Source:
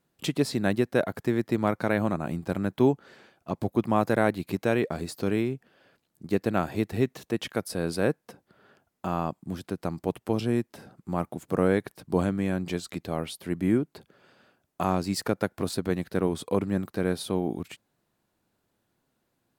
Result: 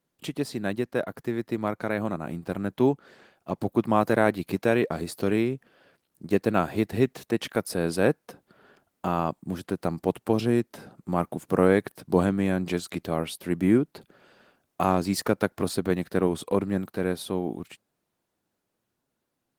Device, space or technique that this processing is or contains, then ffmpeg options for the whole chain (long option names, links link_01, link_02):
video call: -af "highpass=frequency=110:poles=1,dynaudnorm=framelen=280:gausssize=21:maxgain=8.5dB,volume=-3dB" -ar 48000 -c:a libopus -b:a 20k